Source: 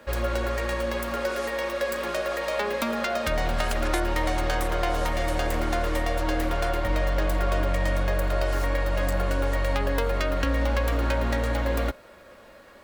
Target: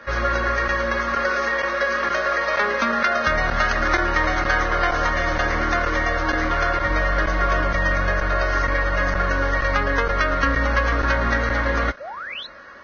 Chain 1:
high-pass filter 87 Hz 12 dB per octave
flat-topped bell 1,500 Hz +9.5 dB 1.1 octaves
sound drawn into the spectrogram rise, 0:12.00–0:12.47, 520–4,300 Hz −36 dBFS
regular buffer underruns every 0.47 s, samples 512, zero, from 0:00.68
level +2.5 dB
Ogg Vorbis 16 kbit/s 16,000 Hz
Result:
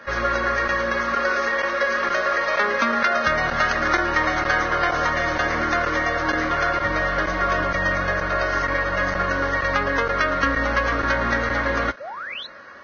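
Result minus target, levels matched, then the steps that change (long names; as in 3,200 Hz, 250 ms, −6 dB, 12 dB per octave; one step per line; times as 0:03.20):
125 Hz band −4.5 dB
change: high-pass filter 35 Hz 12 dB per octave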